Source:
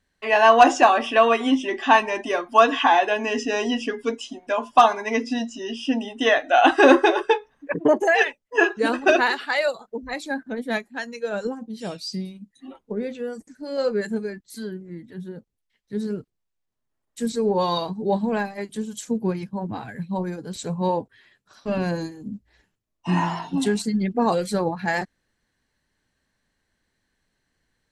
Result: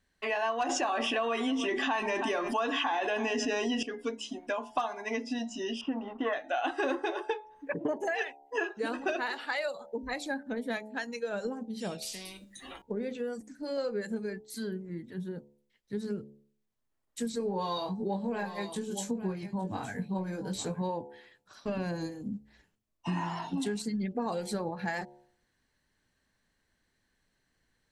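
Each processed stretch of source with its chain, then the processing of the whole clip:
0.69–3.83 s: delay 318 ms -22 dB + level flattener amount 70%
5.81–6.33 s: companding laws mixed up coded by A + low-pass 1.6 kHz + peaking EQ 1.1 kHz +13 dB 0.8 oct
12.02–12.82 s: feedback comb 66 Hz, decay 0.28 s, harmonics odd + spectrum-flattening compressor 4:1
17.38–20.82 s: doubling 21 ms -5 dB + delay 864 ms -15 dB
whole clip: de-hum 71.66 Hz, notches 13; compression 4:1, threshold -29 dBFS; trim -2 dB

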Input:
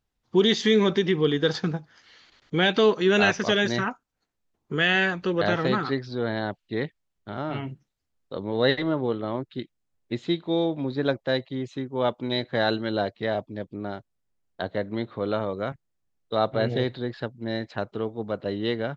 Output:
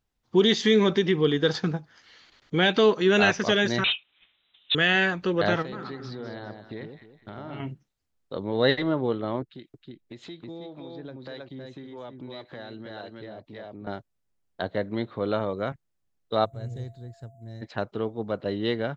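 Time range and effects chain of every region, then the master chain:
3.84–4.75 s: overdrive pedal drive 32 dB, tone 1.1 kHz, clips at -14.5 dBFS + frequency inversion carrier 3.9 kHz
5.62–7.60 s: compression 5:1, threshold -34 dBFS + echo whose repeats swap between lows and highs 102 ms, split 910 Hz, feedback 57%, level -4.5 dB
9.42–13.87 s: delay 318 ms -4.5 dB + compression 4:1, threshold -36 dBFS + harmonic tremolo 1.8 Hz, depth 50%, crossover 400 Hz
16.44–17.61 s: FFT filter 100 Hz 0 dB, 250 Hz -17 dB, 3.3 kHz -24 dB, 4.9 kHz -15 dB, 7.1 kHz +7 dB + whistle 680 Hz -55 dBFS
whole clip: none

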